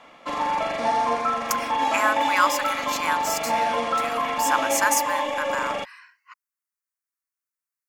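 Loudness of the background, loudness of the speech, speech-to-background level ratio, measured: −24.5 LKFS, −26.5 LKFS, −2.0 dB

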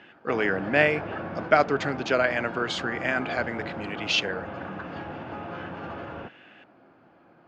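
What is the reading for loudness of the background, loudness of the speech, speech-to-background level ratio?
−36.5 LKFS, −26.0 LKFS, 10.5 dB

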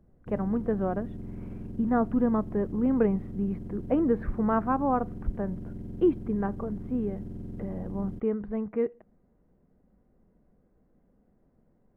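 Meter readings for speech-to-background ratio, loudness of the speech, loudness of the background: 11.5 dB, −29.0 LKFS, −40.5 LKFS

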